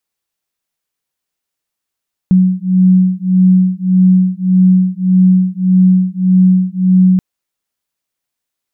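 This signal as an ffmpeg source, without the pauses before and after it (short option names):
-f lavfi -i "aevalsrc='0.316*(sin(2*PI*184*t)+sin(2*PI*185.7*t))':d=4.88:s=44100"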